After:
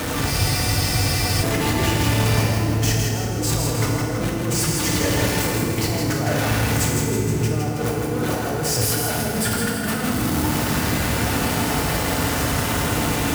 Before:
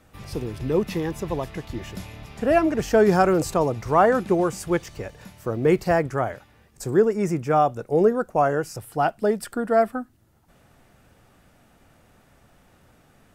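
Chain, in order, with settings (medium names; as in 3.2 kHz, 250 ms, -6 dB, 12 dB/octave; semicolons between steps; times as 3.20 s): jump at every zero crossing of -23 dBFS; high-pass 45 Hz 24 dB/octave; compressor with a negative ratio -26 dBFS, ratio -1; slow attack 141 ms; on a send: two-band feedback delay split 320 Hz, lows 680 ms, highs 162 ms, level -5 dB; on the sum: FDN reverb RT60 1.9 s, low-frequency decay 1.5×, high-frequency decay 0.75×, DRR -1.5 dB; spectral freeze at 0.32 s, 1.11 s; trim -2.5 dB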